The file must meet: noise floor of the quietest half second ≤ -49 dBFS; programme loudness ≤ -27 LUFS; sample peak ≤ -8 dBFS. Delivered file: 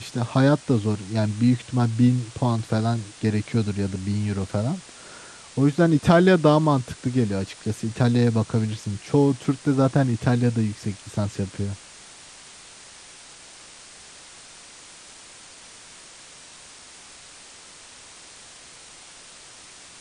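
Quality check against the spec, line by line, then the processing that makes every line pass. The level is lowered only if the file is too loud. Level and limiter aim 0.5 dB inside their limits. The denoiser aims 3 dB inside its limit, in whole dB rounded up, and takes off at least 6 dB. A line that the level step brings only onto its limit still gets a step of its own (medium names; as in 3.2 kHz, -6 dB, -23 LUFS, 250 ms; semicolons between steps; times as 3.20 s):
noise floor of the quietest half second -46 dBFS: fail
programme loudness -22.5 LUFS: fail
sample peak -3.0 dBFS: fail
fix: trim -5 dB; peak limiter -8.5 dBFS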